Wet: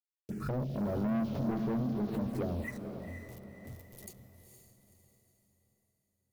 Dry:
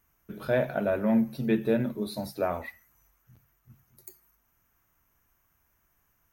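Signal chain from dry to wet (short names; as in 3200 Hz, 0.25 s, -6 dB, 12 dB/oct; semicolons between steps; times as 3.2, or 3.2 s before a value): treble ducked by the level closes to 380 Hz, closed at -26 dBFS; low shelf 180 Hz +5.5 dB; notch 1500 Hz, Q 14; in parallel at +1 dB: compressor 6:1, threshold -35 dBFS, peak gain reduction 15.5 dB; on the sum: bit-crush 8-bit; rotary speaker horn 0.6 Hz, later 6.3 Hz, at 2.87; envelope phaser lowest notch 200 Hz, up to 1600 Hz, full sweep at -27 dBFS; soft clip -29.5 dBFS, distortion -6 dB; diffused feedback echo 0.486 s, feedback 41%, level -7 dB; backwards sustainer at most 83 dB/s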